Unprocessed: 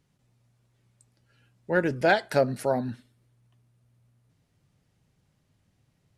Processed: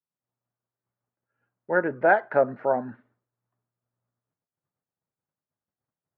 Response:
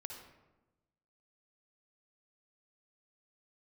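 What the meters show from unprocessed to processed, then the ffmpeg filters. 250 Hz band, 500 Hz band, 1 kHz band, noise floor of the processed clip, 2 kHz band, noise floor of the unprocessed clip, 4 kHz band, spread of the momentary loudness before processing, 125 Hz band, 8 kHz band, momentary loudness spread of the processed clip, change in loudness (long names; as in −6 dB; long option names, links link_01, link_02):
−3.0 dB, +2.0 dB, +3.5 dB, below −85 dBFS, +2.0 dB, −72 dBFS, below −20 dB, 6 LU, −8.5 dB, below −30 dB, 7 LU, +2.0 dB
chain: -af "lowpass=frequency=1500:width=0.5412,lowpass=frequency=1500:width=1.3066,agate=range=-33dB:threshold=-56dB:ratio=3:detection=peak,highpass=frequency=820:poles=1,volume=7dB"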